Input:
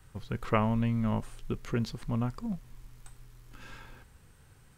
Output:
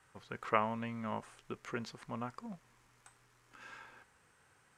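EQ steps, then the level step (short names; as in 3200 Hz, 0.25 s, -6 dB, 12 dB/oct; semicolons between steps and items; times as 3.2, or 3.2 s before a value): HPF 1400 Hz 6 dB/oct; LPF 6100 Hz 12 dB/oct; bell 3900 Hz -10.5 dB 1.5 oct; +4.5 dB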